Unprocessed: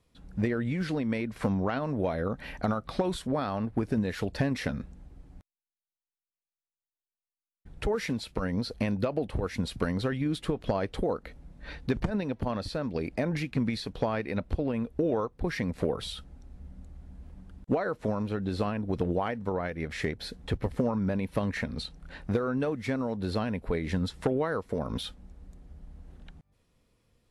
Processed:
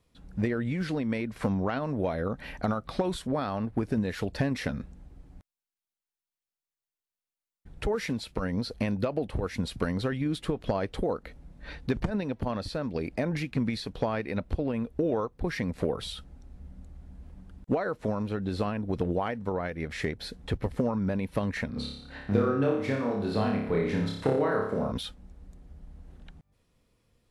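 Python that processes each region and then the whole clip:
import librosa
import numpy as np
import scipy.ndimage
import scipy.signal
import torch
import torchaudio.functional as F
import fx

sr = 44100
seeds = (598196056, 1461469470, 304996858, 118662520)

y = fx.chain(x, sr, fx.highpass(hz=89.0, slope=12),
    fx.high_shelf(hz=4100.0, db=-7.0),
    fx.room_flutter(wall_m=5.0, rt60_s=0.71), at=(21.7, 24.92))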